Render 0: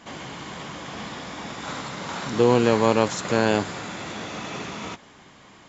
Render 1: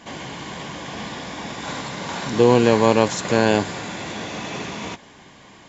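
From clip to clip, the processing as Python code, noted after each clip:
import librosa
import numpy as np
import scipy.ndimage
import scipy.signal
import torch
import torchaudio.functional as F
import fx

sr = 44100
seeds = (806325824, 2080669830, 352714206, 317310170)

y = fx.notch(x, sr, hz=1300.0, q=6.7)
y = y * 10.0 ** (3.5 / 20.0)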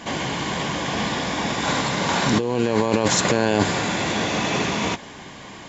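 y = fx.over_compress(x, sr, threshold_db=-22.0, ratio=-1.0)
y = y * 10.0 ** (3.5 / 20.0)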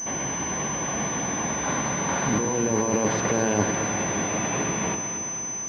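y = fx.echo_alternate(x, sr, ms=112, hz=970.0, feedback_pct=80, wet_db=-6.5)
y = fx.pwm(y, sr, carrier_hz=6100.0)
y = y * 10.0 ** (-5.0 / 20.0)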